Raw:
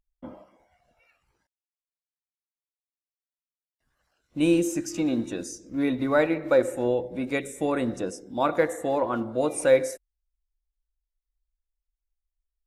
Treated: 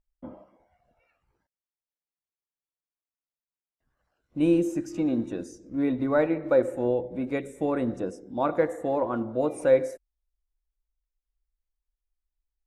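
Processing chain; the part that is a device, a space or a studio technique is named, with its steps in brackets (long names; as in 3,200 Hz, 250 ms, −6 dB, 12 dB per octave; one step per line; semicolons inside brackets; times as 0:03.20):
through cloth (high-shelf EQ 2,000 Hz −13 dB)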